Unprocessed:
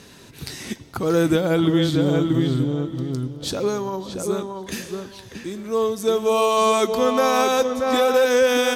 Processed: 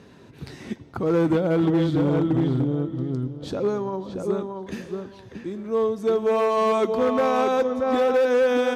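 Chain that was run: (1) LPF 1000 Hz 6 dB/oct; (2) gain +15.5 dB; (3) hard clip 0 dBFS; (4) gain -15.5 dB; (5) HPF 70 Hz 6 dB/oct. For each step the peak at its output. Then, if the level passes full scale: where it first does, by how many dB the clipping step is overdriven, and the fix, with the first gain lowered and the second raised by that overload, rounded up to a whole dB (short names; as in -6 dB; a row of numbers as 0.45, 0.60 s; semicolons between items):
-9.0, +6.5, 0.0, -15.5, -13.0 dBFS; step 2, 6.5 dB; step 2 +8.5 dB, step 4 -8.5 dB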